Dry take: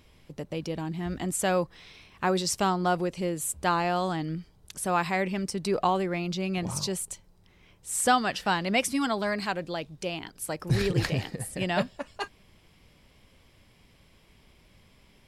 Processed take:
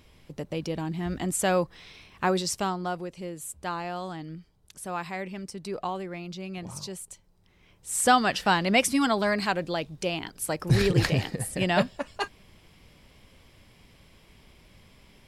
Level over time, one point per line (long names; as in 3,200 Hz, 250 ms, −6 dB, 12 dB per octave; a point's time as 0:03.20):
0:02.25 +1.5 dB
0:03.01 −7 dB
0:07.05 −7 dB
0:08.24 +3.5 dB